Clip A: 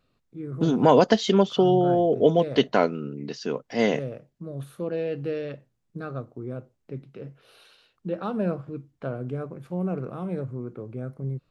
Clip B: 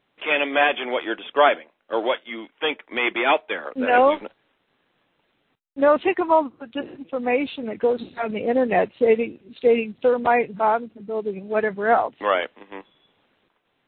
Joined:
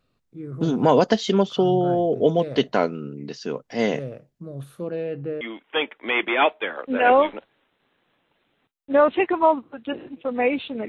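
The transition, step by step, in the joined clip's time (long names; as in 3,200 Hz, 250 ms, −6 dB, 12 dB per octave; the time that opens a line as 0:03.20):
clip A
0:04.90–0:05.41: low-pass filter 4,600 Hz → 1,400 Hz
0:05.41: continue with clip B from 0:02.29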